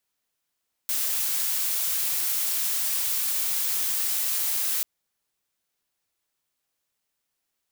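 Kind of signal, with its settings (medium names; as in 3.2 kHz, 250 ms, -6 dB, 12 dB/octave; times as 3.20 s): noise blue, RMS -26 dBFS 3.94 s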